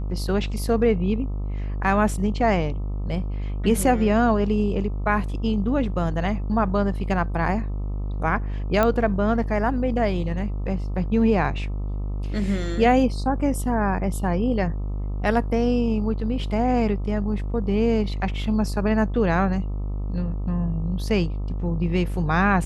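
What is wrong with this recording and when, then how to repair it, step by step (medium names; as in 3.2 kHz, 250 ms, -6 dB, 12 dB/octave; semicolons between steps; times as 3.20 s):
buzz 50 Hz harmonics 26 -27 dBFS
8.83 s: pop -8 dBFS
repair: de-click; de-hum 50 Hz, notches 26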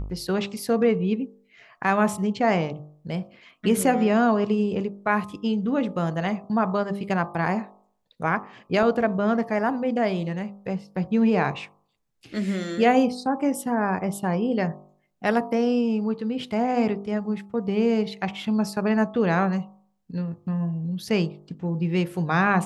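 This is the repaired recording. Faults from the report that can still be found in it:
nothing left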